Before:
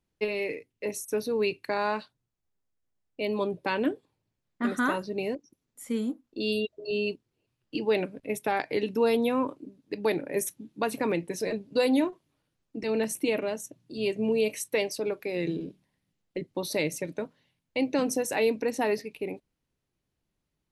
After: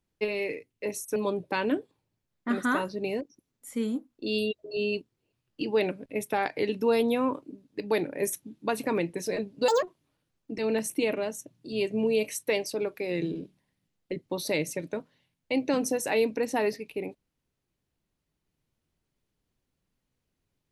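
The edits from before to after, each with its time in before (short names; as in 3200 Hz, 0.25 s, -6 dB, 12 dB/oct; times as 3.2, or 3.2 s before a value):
1.16–3.3 cut
11.82–12.08 speed 176%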